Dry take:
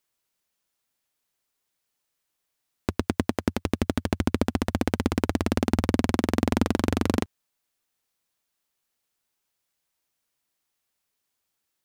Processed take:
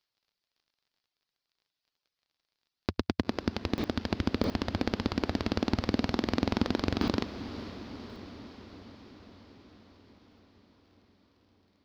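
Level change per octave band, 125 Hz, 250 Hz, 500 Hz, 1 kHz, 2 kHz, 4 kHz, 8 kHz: -5.5, -5.0, -5.0, -5.0, -4.0, -0.5, -11.5 dB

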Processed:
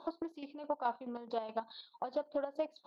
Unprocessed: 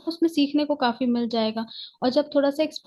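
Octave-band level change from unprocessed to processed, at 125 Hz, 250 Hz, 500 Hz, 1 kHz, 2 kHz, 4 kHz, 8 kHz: under -20 dB, -21.5 dB, -14.0 dB, -9.5 dB, -17.0 dB, -23.0 dB, n/a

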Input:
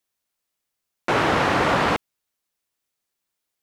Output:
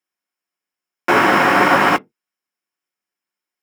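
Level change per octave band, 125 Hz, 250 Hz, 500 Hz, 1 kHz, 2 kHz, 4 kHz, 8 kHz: -0.5, +6.0, +4.5, +7.5, +8.5, +3.5, +5.0 dB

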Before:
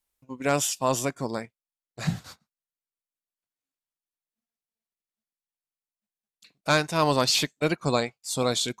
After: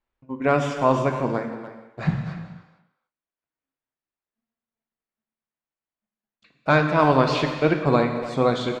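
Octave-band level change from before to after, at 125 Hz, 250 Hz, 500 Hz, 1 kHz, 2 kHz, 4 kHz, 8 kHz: +6.5 dB, +6.5 dB, +6.0 dB, +6.0 dB, +4.0 dB, -6.5 dB, under -15 dB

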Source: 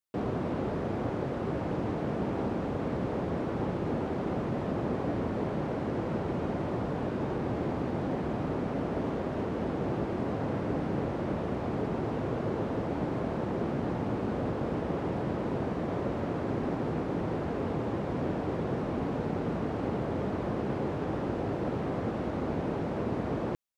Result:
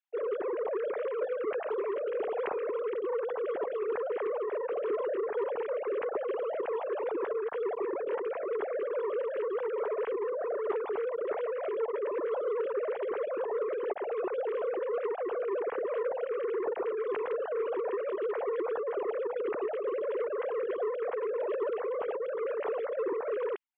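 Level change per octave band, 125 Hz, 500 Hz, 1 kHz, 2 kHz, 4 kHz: under -40 dB, +4.5 dB, -2.5 dB, -0.5 dB, n/a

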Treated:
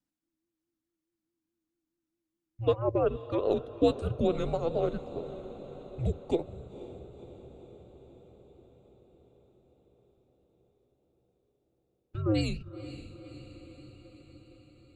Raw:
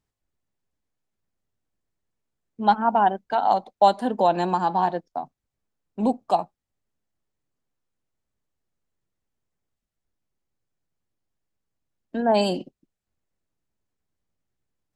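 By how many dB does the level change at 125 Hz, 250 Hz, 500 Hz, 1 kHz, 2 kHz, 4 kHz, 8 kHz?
+3.5 dB, -5.0 dB, -4.0 dB, -20.0 dB, -12.0 dB, -8.5 dB, n/a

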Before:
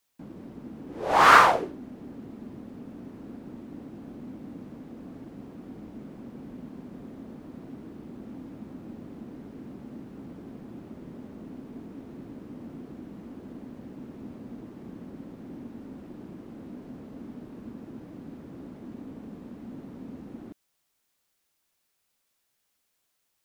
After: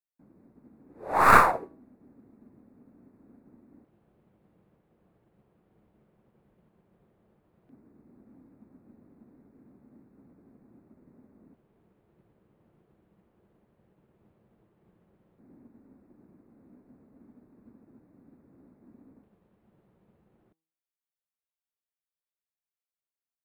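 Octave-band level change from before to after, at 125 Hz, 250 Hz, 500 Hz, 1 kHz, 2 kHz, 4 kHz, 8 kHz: -3.0 dB, -8.5 dB, -3.0 dB, -2.5 dB, -3.0 dB, -11.5 dB, n/a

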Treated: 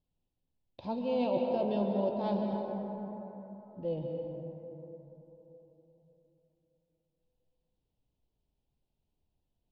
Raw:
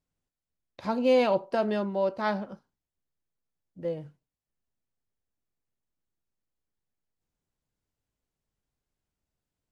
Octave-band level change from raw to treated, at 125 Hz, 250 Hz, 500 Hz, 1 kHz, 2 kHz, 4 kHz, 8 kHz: +1.5 dB, -1.5 dB, -5.0 dB, -5.5 dB, -16.0 dB, -8.5 dB, n/a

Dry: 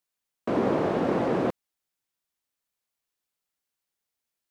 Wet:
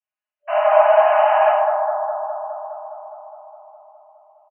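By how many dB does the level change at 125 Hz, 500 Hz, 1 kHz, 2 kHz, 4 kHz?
under -40 dB, +12.5 dB, +17.0 dB, +13.0 dB, n/a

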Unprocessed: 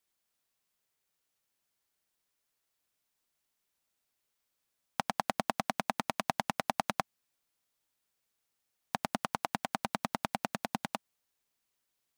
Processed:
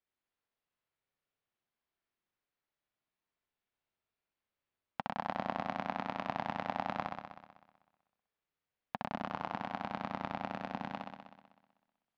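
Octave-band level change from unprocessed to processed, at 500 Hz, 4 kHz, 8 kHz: -2.5 dB, -9.0 dB, under -20 dB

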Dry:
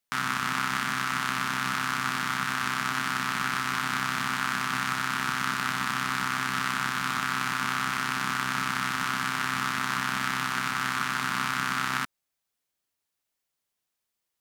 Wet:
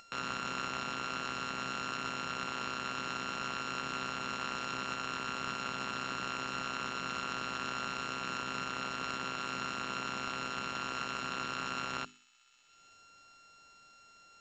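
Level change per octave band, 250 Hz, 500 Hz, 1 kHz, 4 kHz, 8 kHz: -8.0, +0.5, -9.0, -7.5, -11.0 dB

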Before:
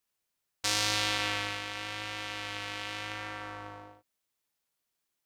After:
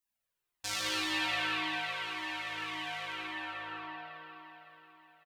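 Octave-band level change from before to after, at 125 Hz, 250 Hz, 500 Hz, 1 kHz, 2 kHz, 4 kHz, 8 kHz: -9.5, +1.0, -4.0, 0.0, 0.0, -3.0, -6.5 dB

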